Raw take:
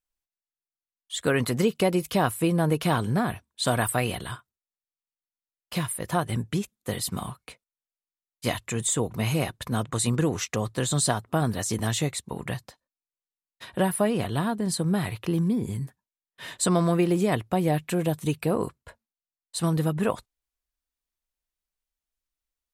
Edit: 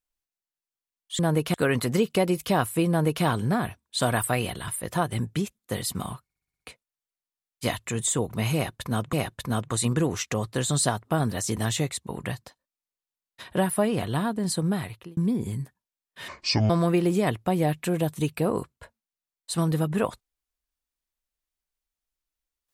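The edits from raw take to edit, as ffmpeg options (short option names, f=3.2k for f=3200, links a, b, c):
-filter_complex "[0:a]asplit=14[a][b][c][d][e][f][g][h][i][j][k][l][m][n];[a]atrim=end=1.192[o];[b]atrim=start=2.538:end=2.892[p];[c]atrim=start=1.188:end=4.332[q];[d]atrim=start=5.848:end=7.472[r];[e]atrim=start=7.408:end=7.472[s];[f]atrim=start=7.408:end=7.472[t];[g]atrim=start=7.408:end=7.472[u];[h]atrim=start=7.408:end=7.472[v];[i]atrim=start=7.408:end=7.472[w];[j]atrim=start=7.408:end=9.942[x];[k]atrim=start=9.348:end=15.39,asetpts=PTS-STARTPTS,afade=t=out:st=5.522:d=0.52[y];[l]atrim=start=15.39:end=16.504,asetpts=PTS-STARTPTS,afade=t=in:d=0.004:c=hsin[z];[m]atrim=start=16.5:end=16.75,asetpts=PTS-STARTPTS,asetrate=26460,aresample=44100[aa];[n]atrim=start=16.746[ab];[o][p]acrossfade=d=0.004:c1=hsin:c2=hsin[ac];[ac][q]acrossfade=d=0.004:c1=hsin:c2=hsin[ad];[ad][r]acrossfade=d=0.004:c1=hsin:c2=hsin[ae];[ae][s]acrossfade=d=0.004:c1=hsin:c2=hsin[af];[af][t]acrossfade=d=0.004:c1=hsin:c2=hsin[ag];[ag][u]acrossfade=d=0.004:c1=hsin:c2=hsin[ah];[ah][v]acrossfade=d=0.004:c1=hsin:c2=hsin[ai];[ai][w]acrossfade=d=0.004:c1=hsin:c2=hsin[aj];[aj][x]acrossfade=d=0.004:c1=hsin:c2=hsin[ak];[y][z]concat=n=2:v=0:a=1[al];[ak][al]acrossfade=d=0.004:c1=hsin:c2=hsin[am];[am][aa]acrossfade=d=0.004:c1=hsin:c2=hsin[an];[an][ab]acrossfade=d=0.004:c1=hsin:c2=hsin"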